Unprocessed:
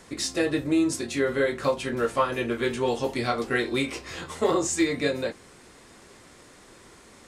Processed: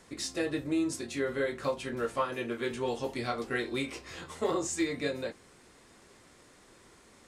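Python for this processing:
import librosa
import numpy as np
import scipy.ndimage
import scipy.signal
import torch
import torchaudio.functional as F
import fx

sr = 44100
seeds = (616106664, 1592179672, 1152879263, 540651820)

y = fx.highpass(x, sr, hz=110.0, slope=12, at=(2.22, 2.71))
y = y * 10.0 ** (-7.0 / 20.0)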